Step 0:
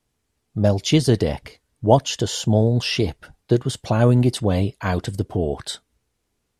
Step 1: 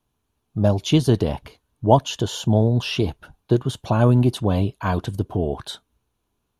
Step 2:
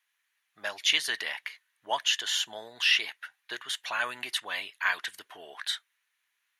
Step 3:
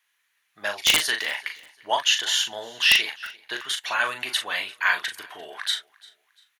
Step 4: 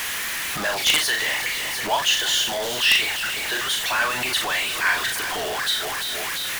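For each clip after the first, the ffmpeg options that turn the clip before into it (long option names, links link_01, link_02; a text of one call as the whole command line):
ffmpeg -i in.wav -af "equalizer=frequency=500:width_type=o:width=0.33:gain=-4,equalizer=frequency=1000:width_type=o:width=0.33:gain=5,equalizer=frequency=2000:width_type=o:width=0.33:gain=-10,equalizer=frequency=5000:width_type=o:width=0.33:gain=-9,equalizer=frequency=8000:width_type=o:width=0.33:gain=-11" out.wav
ffmpeg -i in.wav -af "highpass=frequency=1900:width_type=q:width=6.7" out.wav
ffmpeg -i in.wav -filter_complex "[0:a]aeval=exprs='(mod(3.98*val(0)+1,2)-1)/3.98':channel_layout=same,asplit=2[link_01][link_02];[link_02]adelay=39,volume=-7dB[link_03];[link_01][link_03]amix=inputs=2:normalize=0,aecho=1:1:346|692:0.0668|0.0227,volume=5.5dB" out.wav
ffmpeg -i in.wav -af "aeval=exprs='val(0)+0.5*0.112*sgn(val(0))':channel_layout=same,volume=-2.5dB" out.wav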